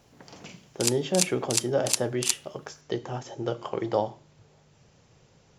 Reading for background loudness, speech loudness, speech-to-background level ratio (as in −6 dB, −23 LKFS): −28.5 LKFS, −30.0 LKFS, −1.5 dB